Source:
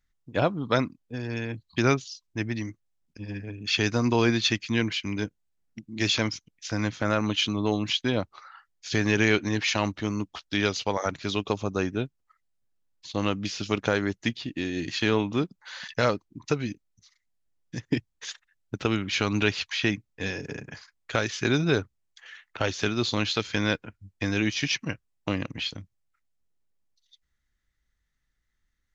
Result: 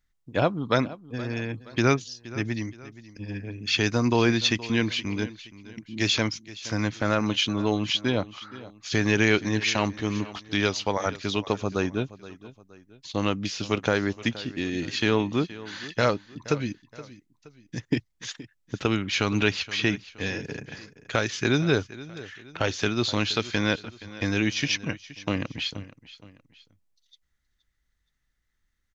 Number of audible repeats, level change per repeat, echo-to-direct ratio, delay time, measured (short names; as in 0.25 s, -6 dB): 2, -7.5 dB, -17.0 dB, 0.472 s